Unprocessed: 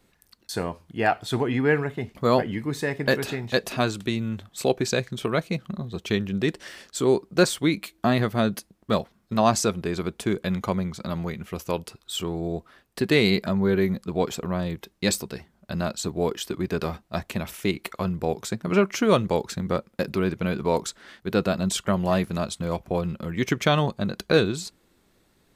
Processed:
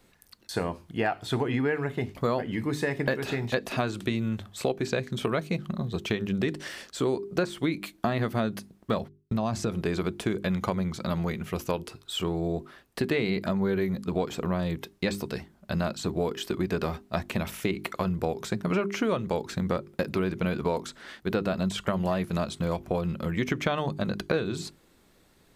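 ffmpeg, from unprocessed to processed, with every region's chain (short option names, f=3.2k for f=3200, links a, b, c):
-filter_complex "[0:a]asettb=1/sr,asplit=3[a][b][c];[a]atrim=end=9.014[d];[b]atrim=start=9.01:end=9.72,asetpts=PTS-STARTPTS,afade=t=in:d=0.004:c=qsin,afade=t=out:st=0.706:d=0.004:c=qsin,agate=range=-33dB:threshold=-51dB:ratio=16:release=100:detection=peak,lowshelf=f=250:g=9.5,acompressor=threshold=-24dB:ratio=4:attack=3.2:release=140:knee=1:detection=peak[e];[c]atrim=start=9.716[f];[d][e]acrossfade=d=0.004:c1=hsin:c2=qsin[g];[g][f]acrossfade=d=0.004:c1=qsin:c2=hsin,acrossover=split=3200[h][i];[i]acompressor=threshold=-40dB:ratio=4:attack=1:release=60[j];[h][j]amix=inputs=2:normalize=0,bandreject=f=50:t=h:w=6,bandreject=f=100:t=h:w=6,bandreject=f=150:t=h:w=6,bandreject=f=200:t=h:w=6,bandreject=f=250:t=h:w=6,bandreject=f=300:t=h:w=6,bandreject=f=350:t=h:w=6,bandreject=f=400:t=h:w=6,acompressor=threshold=-26dB:ratio=6,volume=2.5dB"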